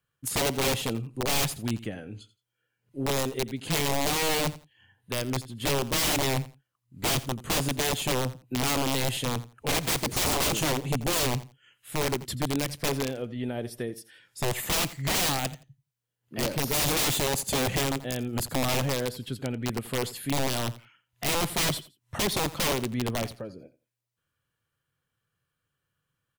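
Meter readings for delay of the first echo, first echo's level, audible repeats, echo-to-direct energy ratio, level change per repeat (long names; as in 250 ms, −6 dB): 85 ms, −17.0 dB, 2, −17.0 dB, −14.0 dB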